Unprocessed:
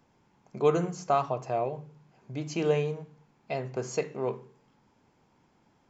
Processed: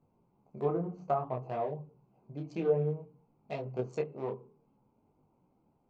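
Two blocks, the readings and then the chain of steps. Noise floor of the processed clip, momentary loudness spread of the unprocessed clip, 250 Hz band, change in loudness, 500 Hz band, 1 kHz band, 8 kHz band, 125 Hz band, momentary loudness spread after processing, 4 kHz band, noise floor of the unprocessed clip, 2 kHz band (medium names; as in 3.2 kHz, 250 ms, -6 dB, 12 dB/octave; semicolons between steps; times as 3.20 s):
-73 dBFS, 15 LU, -4.0 dB, -4.5 dB, -4.5 dB, -6.0 dB, no reading, -2.5 dB, 14 LU, under -10 dB, -68 dBFS, -10.5 dB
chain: local Wiener filter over 25 samples; low-pass that closes with the level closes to 870 Hz, closed at -21.5 dBFS; detune thickener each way 20 cents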